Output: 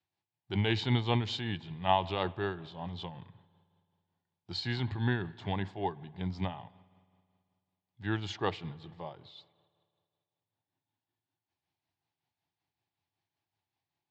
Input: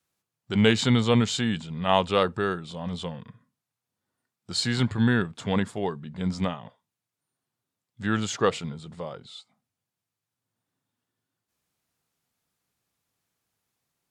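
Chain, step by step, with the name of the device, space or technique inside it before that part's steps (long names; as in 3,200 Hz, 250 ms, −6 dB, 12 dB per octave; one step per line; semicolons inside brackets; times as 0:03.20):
combo amplifier with spring reverb and tremolo (spring reverb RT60 2.2 s, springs 54 ms, chirp 35 ms, DRR 20 dB; amplitude tremolo 5.3 Hz, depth 45%; loudspeaker in its box 76–4,600 Hz, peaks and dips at 95 Hz +7 dB, 220 Hz −9 dB, 340 Hz +4 dB, 490 Hz −9 dB, 840 Hz +8 dB, 1,300 Hz −9 dB)
level −4.5 dB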